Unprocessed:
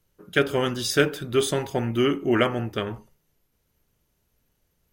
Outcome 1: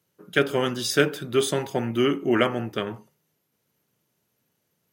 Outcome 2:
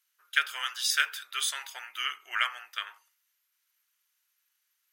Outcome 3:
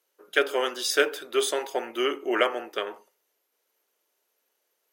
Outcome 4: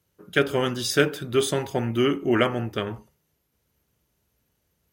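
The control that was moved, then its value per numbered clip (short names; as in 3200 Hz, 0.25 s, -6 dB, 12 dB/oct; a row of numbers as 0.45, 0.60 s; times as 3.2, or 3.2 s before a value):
HPF, cutoff: 120, 1300, 400, 49 Hz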